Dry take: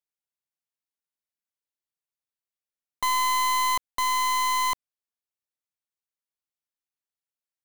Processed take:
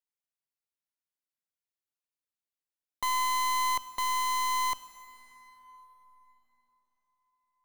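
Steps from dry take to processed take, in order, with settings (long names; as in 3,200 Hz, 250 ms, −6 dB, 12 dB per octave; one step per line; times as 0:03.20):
dense smooth reverb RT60 4.6 s, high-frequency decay 0.6×, DRR 12.5 dB
level −5 dB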